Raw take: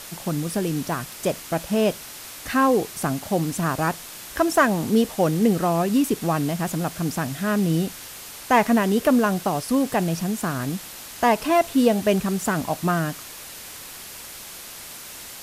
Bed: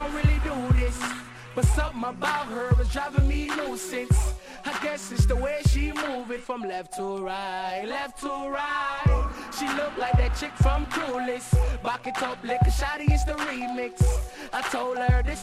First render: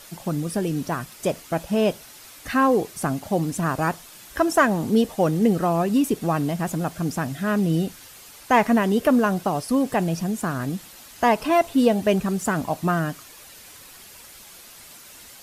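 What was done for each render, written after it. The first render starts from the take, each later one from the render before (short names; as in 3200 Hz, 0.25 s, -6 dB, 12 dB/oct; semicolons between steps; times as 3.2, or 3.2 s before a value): denoiser 8 dB, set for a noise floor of -39 dBFS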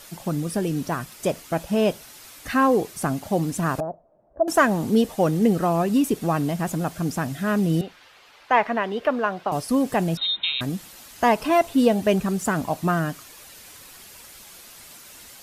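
3.8–4.48 ladder low-pass 680 Hz, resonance 75%; 7.81–9.52 three-band isolator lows -13 dB, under 430 Hz, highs -23 dB, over 4100 Hz; 10.17–10.61 inverted band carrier 3900 Hz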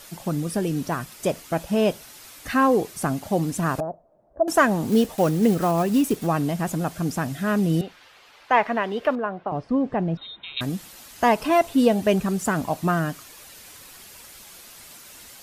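4.85–6.27 block floating point 5-bit; 9.15–10.57 tape spacing loss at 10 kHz 41 dB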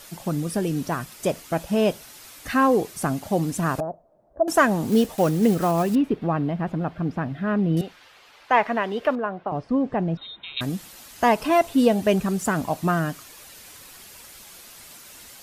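5.95–7.77 air absorption 380 m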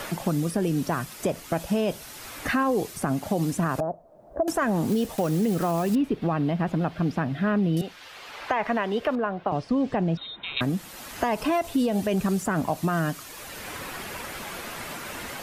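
limiter -15.5 dBFS, peak gain reduction 10 dB; three-band squash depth 70%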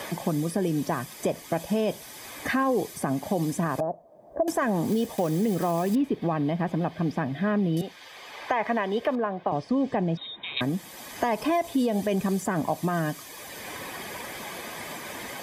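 notch comb 1400 Hz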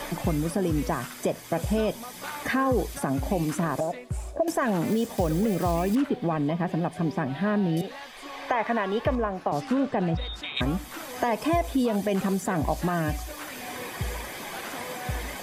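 add bed -11.5 dB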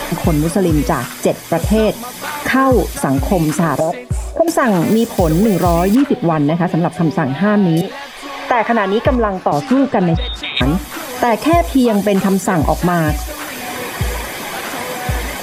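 gain +12 dB; limiter -1 dBFS, peak gain reduction 1 dB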